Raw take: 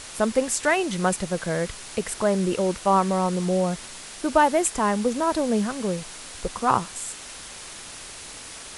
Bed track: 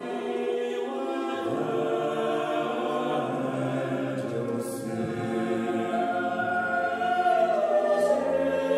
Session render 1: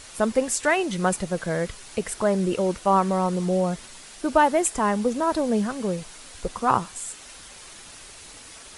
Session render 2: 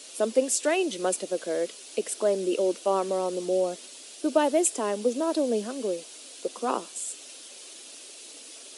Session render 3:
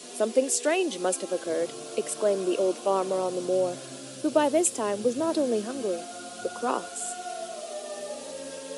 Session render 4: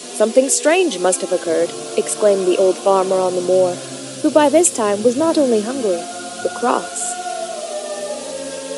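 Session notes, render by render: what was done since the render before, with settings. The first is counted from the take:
broadband denoise 6 dB, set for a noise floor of −40 dBFS
Butterworth high-pass 260 Hz 36 dB per octave; flat-topped bell 1,300 Hz −10 dB
mix in bed track −14 dB
level +11 dB; brickwall limiter −1 dBFS, peak gain reduction 3 dB

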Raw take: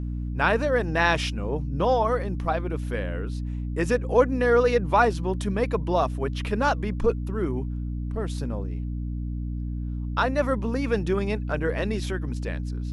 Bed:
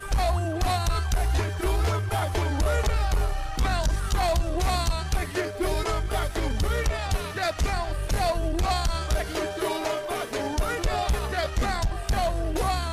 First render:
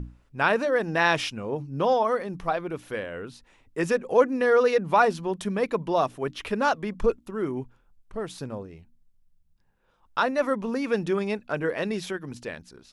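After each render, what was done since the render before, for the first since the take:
mains-hum notches 60/120/180/240/300 Hz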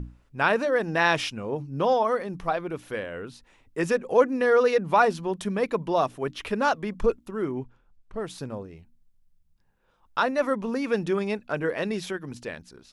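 0:07.46–0:08.17: high-frequency loss of the air 60 metres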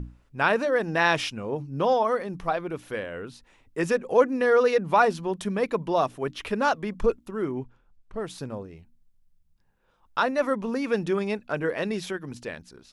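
no processing that can be heard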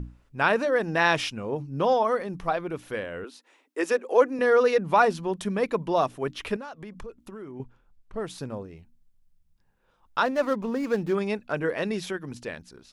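0:03.24–0:04.39: Butterworth high-pass 270 Hz
0:06.56–0:07.60: downward compressor, threshold −37 dBFS
0:10.25–0:11.15: running median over 15 samples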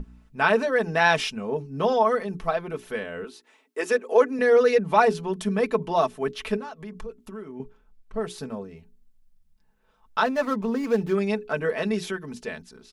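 mains-hum notches 60/120/180/240/300/360/420 Hz
comb filter 4.6 ms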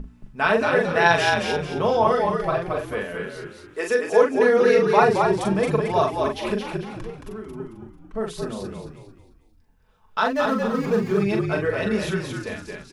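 double-tracking delay 41 ms −4.5 dB
echo with shifted repeats 222 ms, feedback 36%, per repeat −43 Hz, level −4 dB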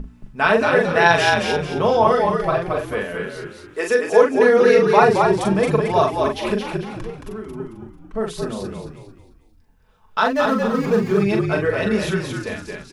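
level +3.5 dB
brickwall limiter −1 dBFS, peak gain reduction 1 dB

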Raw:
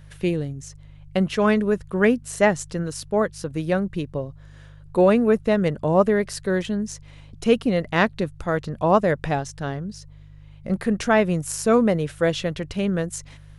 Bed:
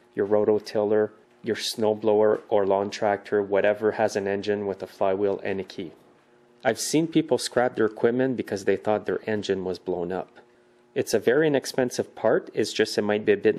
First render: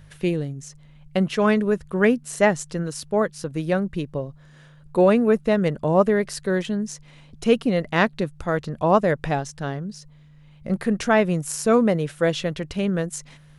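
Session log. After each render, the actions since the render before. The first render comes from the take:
hum removal 50 Hz, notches 2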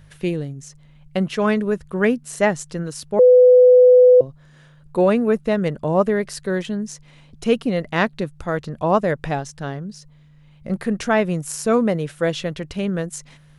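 0:03.19–0:04.21: beep over 500 Hz −6.5 dBFS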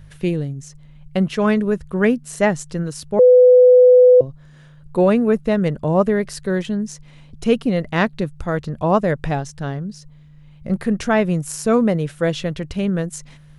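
low-shelf EQ 170 Hz +7.5 dB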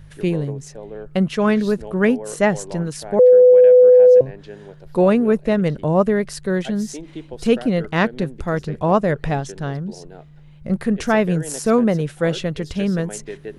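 mix in bed −12.5 dB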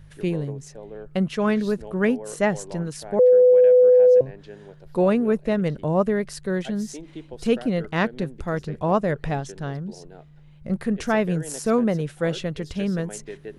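level −4.5 dB

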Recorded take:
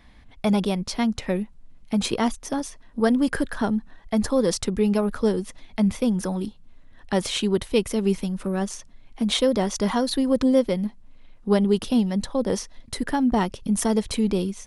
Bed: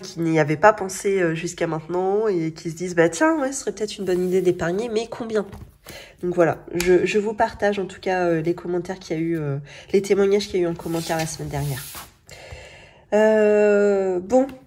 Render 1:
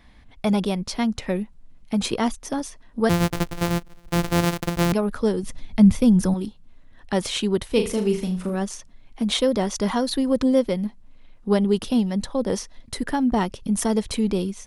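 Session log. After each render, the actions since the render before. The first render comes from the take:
0:03.09–0:04.93: samples sorted by size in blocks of 256 samples
0:05.43–0:06.34: bass and treble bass +11 dB, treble +3 dB
0:07.66–0:08.55: flutter between parallel walls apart 6.6 metres, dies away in 0.35 s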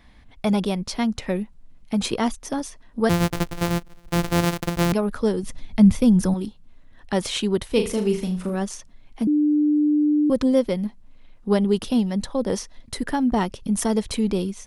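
0:09.27–0:10.30: beep over 298 Hz −15.5 dBFS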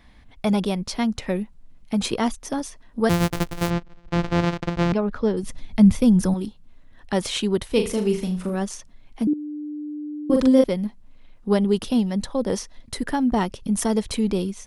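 0:03.70–0:05.37: high-frequency loss of the air 150 metres
0:09.29–0:10.64: double-tracking delay 42 ms −2 dB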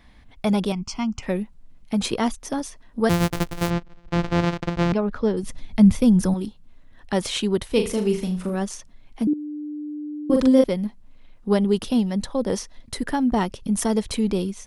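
0:00.72–0:01.23: phaser with its sweep stopped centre 2,600 Hz, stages 8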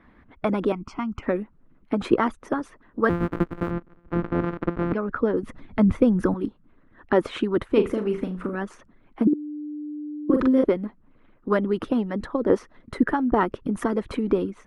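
harmonic and percussive parts rebalanced harmonic −12 dB
drawn EQ curve 110 Hz 0 dB, 320 Hz +11 dB, 780 Hz +2 dB, 1,300 Hz +10 dB, 5,500 Hz −18 dB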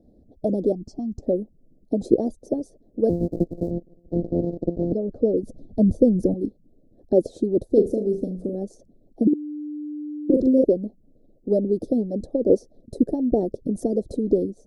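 inverse Chebyshev band-stop filter 960–3,000 Hz, stop band 40 dB
parametric band 680 Hz +5.5 dB 1.4 octaves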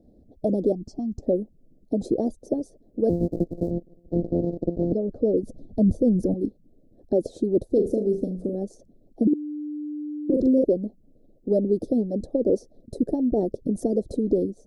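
brickwall limiter −12 dBFS, peak gain reduction 9.5 dB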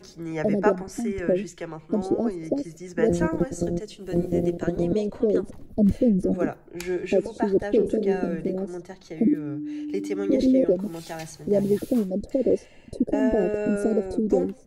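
mix in bed −11.5 dB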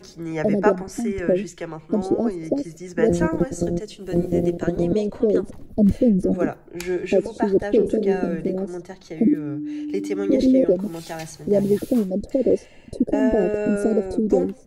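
level +3 dB

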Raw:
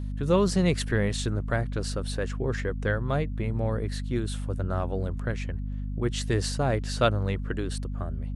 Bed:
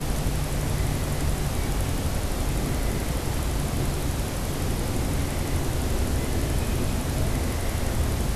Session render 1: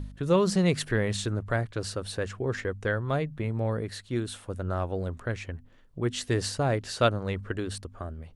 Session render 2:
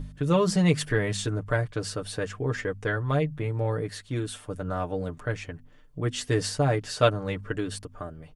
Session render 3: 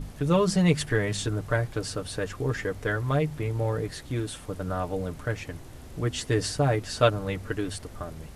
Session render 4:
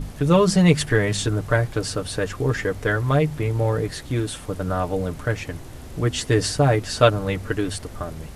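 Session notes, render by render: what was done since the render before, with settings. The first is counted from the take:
hum removal 50 Hz, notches 5
notch filter 4,000 Hz, Q 15; comb filter 6.7 ms, depth 69%
mix in bed −19 dB
level +6 dB; brickwall limiter −3 dBFS, peak gain reduction 1 dB

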